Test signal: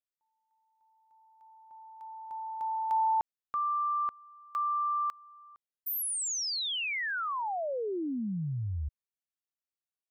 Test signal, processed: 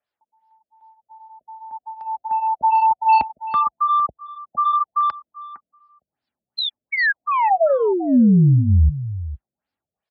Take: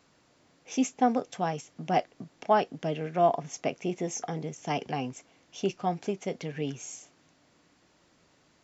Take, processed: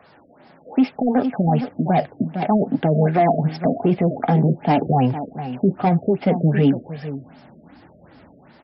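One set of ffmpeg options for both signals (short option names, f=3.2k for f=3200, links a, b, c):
-filter_complex "[0:a]aresample=16000,aresample=44100,highpass=f=55:w=0.5412,highpass=f=55:w=1.3066,equalizer=f=840:t=o:w=0.2:g=9.5,acrossover=split=250[a][b];[a]dynaudnorm=f=760:g=3:m=10.5dB[c];[b]asoftclip=type=tanh:threshold=-25dB[d];[c][d]amix=inputs=2:normalize=0,equalizer=f=250:t=o:w=0.67:g=5,equalizer=f=630:t=o:w=0.67:g=7,equalizer=f=1.6k:t=o:w=0.67:g=6,equalizer=f=6.3k:t=o:w=0.67:g=5,aecho=1:1:458:0.188,flanger=delay=1.6:depth=3.8:regen=-40:speed=1:shape=sinusoidal,alimiter=level_in=21.5dB:limit=-1dB:release=50:level=0:latency=1,afftfilt=real='re*lt(b*sr/1024,660*pow(5500/660,0.5+0.5*sin(2*PI*2.6*pts/sr)))':imag='im*lt(b*sr/1024,660*pow(5500/660,0.5+0.5*sin(2*PI*2.6*pts/sr)))':win_size=1024:overlap=0.75,volume=-7.5dB"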